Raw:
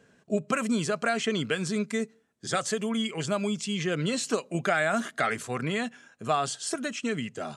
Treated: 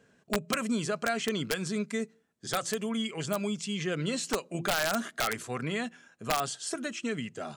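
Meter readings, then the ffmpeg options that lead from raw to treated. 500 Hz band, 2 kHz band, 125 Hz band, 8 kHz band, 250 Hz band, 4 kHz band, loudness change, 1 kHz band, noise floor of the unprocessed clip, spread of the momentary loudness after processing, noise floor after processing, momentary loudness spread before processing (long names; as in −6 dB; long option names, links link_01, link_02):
−3.5 dB, −3.5 dB, −3.5 dB, −1.5 dB, −3.0 dB, −1.0 dB, −3.0 dB, −3.5 dB, −63 dBFS, 5 LU, −67 dBFS, 5 LU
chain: -af "aeval=exprs='(mod(6.31*val(0)+1,2)-1)/6.31':channel_layout=same,bandreject=frequency=170.4:width_type=h:width=4,bandreject=frequency=340.8:width_type=h:width=4,volume=-3dB"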